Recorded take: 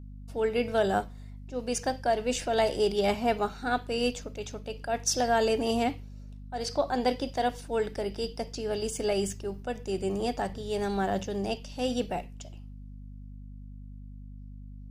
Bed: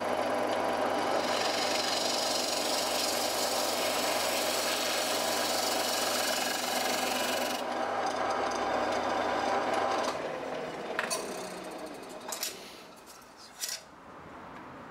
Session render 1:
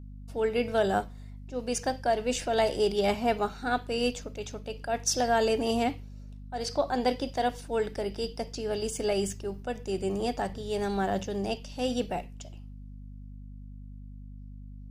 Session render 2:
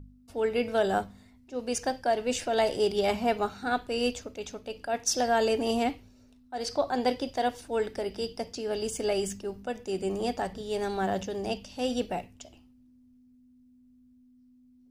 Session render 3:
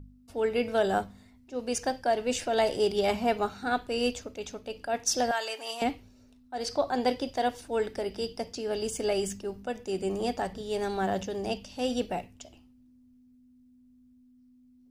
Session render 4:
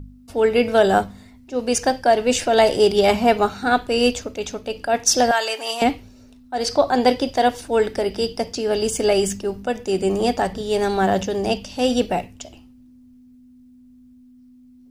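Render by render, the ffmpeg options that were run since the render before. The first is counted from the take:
-af anull
-af "bandreject=f=50:t=h:w=4,bandreject=f=100:t=h:w=4,bandreject=f=150:t=h:w=4,bandreject=f=200:t=h:w=4"
-filter_complex "[0:a]asettb=1/sr,asplit=3[a][b][c];[a]atrim=end=5.314[d];[b]atrim=start=5.31:end=5.82,asetpts=PTS-STARTPTS,afade=t=in:d=0.004:c=qsin,afade=t=out:st=0.506:d=0.004:c=qsin,highpass=1k[e];[c]atrim=start=5.816[f];[d][e]acrossfade=d=0.004:c1=hsin:c2=qsin[g];[g][f]acrossfade=d=0.004:c1=qsin:c2=hsin"
-af "volume=10.5dB"

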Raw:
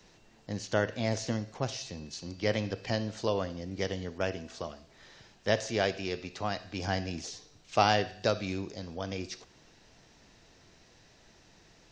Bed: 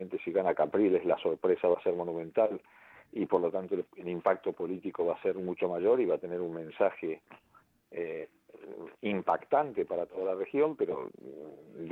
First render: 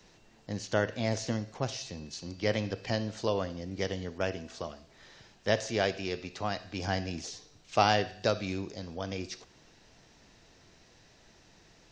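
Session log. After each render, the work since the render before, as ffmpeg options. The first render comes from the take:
-af anull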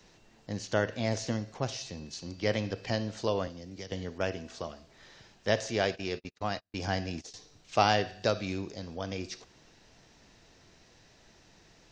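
-filter_complex "[0:a]asettb=1/sr,asplit=3[a][b][c];[a]atrim=end=3.474[d];[b]atrim=start=3.47:end=3.92,asetpts=PTS-STARTPTS,afade=t=in:d=0.004:c=qsin,afade=t=out:st=0.446:d=0.004:c=qsin,acrossover=split=180|3900[e][f][g];[e]acompressor=threshold=-49dB:ratio=4[h];[f]acompressor=threshold=-45dB:ratio=4[i];[g]acompressor=threshold=-46dB:ratio=4[j];[h][i][j]amix=inputs=3:normalize=0[k];[c]atrim=start=3.916[l];[d][k]acrossfade=d=0.004:c1=hsin:c2=qsin[m];[m][l]acrossfade=d=0.004:c1=qsin:c2=hsin,asettb=1/sr,asplit=3[n][o][p];[n]atrim=end=5.854[q];[o]atrim=start=5.85:end=7.34,asetpts=PTS-STARTPTS,afade=t=in:d=0.004:c=qsin,afade=t=out:st=1.486:d=0.004:c=qsin,agate=range=-42dB:threshold=-41dB:ratio=16:release=100:detection=peak[r];[p]atrim=start=7.336[s];[q][r]acrossfade=d=0.004:c1=hsin:c2=qsin[t];[t][s]acrossfade=d=0.004:c1=qsin:c2=hsin"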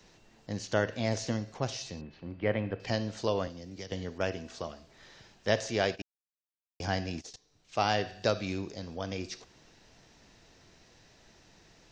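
-filter_complex "[0:a]asettb=1/sr,asplit=3[a][b][c];[a]atrim=end=2.014[d];[b]atrim=start=2.01:end=2.8,asetpts=PTS-STARTPTS,afade=t=in:d=0.004:c=qsin,afade=t=out:st=0.786:d=0.004:c=qsin,lowpass=f=2.5k:w=0.5412,lowpass=f=2.5k:w=1.3066[e];[c]atrim=start=2.796[f];[d][e]acrossfade=d=0.004:c1=hsin:c2=qsin[g];[g][f]acrossfade=d=0.004:c1=qsin:c2=hsin,asplit=4[h][i][j][k];[h]atrim=end=6.02,asetpts=PTS-STARTPTS,afade=t=out:st=6.016:d=0.004:c=hsin[l];[i]atrim=start=6.02:end=6.8,asetpts=PTS-STARTPTS,volume=0[m];[j]atrim=start=6.8:end=7.36,asetpts=PTS-STARTPTS,afade=t=in:d=0.004:c=hsin,afade=t=out:st=0.556:d=0.004:c=hsin:silence=0.125893[n];[k]atrim=start=7.36,asetpts=PTS-STARTPTS,afade=t=in:d=0.81:silence=0.125893[o];[l][m][n][o]concat=n=4:v=0:a=1"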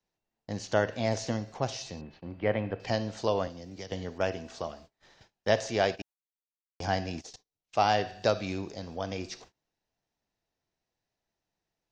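-af "agate=range=-28dB:threshold=-53dB:ratio=16:detection=peak,equalizer=f=770:t=o:w=0.9:g=5"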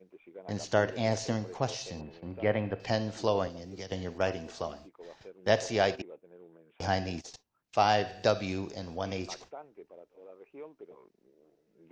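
-filter_complex "[1:a]volume=-18.5dB[a];[0:a][a]amix=inputs=2:normalize=0"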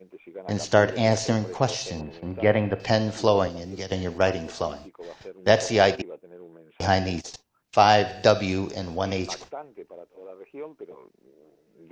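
-af "volume=8dB,alimiter=limit=-3dB:level=0:latency=1"

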